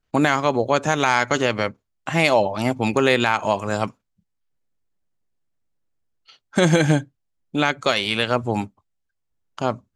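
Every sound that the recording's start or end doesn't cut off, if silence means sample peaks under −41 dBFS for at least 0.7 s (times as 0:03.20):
0:06.28–0:08.68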